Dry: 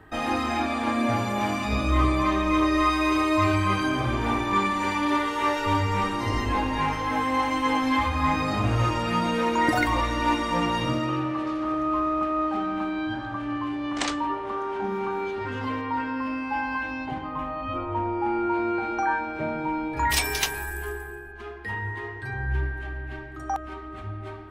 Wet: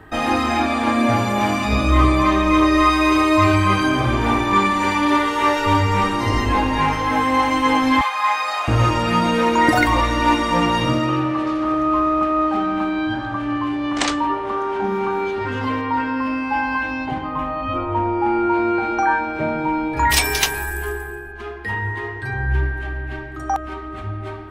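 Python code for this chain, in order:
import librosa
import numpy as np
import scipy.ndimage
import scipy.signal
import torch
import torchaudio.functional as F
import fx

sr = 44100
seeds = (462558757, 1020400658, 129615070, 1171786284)

y = fx.highpass(x, sr, hz=720.0, slope=24, at=(8.01, 8.68))
y = y * 10.0 ** (7.0 / 20.0)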